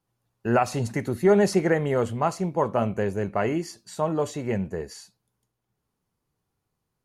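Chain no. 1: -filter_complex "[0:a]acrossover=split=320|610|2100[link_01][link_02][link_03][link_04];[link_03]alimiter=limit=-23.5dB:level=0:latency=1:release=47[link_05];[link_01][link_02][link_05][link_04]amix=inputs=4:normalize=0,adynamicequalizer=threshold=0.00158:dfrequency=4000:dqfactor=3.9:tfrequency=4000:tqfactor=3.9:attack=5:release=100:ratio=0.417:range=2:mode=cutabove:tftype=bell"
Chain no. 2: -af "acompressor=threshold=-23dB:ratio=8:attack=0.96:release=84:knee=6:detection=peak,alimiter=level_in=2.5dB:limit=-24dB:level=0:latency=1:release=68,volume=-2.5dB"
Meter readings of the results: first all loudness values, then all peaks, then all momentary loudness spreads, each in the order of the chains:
−25.5, −35.5 LKFS; −8.5, −26.5 dBFS; 13, 6 LU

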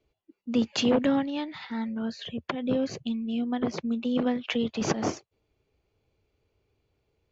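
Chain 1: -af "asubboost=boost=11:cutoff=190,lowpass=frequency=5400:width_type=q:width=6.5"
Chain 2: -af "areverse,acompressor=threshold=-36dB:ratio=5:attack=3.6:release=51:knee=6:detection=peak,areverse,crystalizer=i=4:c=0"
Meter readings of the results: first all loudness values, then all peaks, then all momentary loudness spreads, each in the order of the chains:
−22.0, −35.5 LKFS; −4.5, −18.0 dBFS; 10, 5 LU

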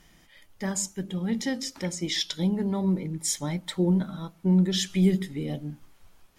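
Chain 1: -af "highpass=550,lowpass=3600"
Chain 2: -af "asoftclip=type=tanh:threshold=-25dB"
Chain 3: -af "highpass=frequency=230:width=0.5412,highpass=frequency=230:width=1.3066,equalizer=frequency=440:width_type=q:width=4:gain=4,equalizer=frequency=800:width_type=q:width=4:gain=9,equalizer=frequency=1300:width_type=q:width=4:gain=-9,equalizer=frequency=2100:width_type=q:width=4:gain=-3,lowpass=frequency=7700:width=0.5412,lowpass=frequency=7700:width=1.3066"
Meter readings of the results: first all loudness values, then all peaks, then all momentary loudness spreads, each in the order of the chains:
−37.5, −31.5, −30.5 LKFS; −19.0, −25.0, −14.0 dBFS; 11, 6, 8 LU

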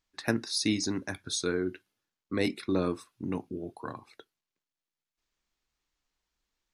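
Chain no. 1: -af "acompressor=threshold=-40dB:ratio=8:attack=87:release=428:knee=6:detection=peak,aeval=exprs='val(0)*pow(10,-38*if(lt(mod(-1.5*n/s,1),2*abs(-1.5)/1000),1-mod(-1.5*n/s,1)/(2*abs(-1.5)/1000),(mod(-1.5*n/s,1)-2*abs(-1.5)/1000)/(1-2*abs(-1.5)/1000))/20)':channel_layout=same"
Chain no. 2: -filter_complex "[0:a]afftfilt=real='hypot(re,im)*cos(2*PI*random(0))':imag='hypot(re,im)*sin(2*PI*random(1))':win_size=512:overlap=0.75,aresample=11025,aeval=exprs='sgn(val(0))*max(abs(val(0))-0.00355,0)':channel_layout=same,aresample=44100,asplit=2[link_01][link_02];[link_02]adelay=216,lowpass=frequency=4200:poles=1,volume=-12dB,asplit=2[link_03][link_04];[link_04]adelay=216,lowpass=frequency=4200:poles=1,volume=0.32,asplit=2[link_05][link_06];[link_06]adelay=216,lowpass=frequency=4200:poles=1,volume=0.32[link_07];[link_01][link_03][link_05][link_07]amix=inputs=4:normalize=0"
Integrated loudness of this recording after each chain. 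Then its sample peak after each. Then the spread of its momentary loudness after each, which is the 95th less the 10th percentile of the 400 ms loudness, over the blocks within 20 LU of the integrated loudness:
−48.5, −39.5 LKFS; −25.0, −19.5 dBFS; 20, 15 LU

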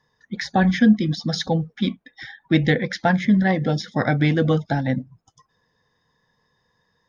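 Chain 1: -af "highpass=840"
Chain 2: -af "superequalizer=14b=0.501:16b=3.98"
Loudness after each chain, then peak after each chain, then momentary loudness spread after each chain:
−29.0, −21.0 LKFS; −10.0, −4.5 dBFS; 11, 12 LU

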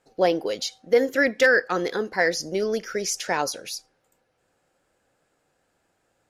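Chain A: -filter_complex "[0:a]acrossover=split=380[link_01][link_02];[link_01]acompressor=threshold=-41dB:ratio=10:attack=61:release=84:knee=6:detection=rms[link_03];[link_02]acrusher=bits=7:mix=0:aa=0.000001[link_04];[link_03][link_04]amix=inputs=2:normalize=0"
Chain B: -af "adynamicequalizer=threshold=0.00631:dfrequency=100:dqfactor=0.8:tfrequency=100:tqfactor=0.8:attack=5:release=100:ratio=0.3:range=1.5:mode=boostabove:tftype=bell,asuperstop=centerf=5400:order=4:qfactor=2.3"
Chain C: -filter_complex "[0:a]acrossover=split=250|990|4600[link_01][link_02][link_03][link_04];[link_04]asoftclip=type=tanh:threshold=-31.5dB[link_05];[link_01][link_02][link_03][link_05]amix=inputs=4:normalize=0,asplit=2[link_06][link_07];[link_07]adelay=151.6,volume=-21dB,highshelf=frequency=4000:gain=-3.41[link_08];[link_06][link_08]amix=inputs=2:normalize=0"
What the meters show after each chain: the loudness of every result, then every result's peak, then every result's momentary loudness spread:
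−24.5, −23.5, −23.5 LKFS; −7.0, −7.5, −6.0 dBFS; 10, 12, 11 LU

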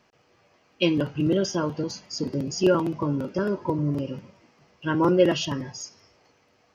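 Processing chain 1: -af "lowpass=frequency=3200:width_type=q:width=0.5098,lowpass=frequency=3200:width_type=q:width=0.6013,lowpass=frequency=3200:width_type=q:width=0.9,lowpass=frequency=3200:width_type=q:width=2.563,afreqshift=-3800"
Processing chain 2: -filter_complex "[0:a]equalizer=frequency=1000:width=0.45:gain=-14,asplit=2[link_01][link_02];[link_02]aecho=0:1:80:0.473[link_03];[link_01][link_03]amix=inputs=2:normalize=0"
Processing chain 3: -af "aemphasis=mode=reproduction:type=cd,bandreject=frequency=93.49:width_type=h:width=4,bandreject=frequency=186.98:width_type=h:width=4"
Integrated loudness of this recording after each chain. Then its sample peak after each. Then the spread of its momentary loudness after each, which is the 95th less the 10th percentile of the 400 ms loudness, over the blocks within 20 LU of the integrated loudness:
−21.5, −30.5, −25.0 LKFS; −7.0, −13.5, −7.5 dBFS; 12, 11, 12 LU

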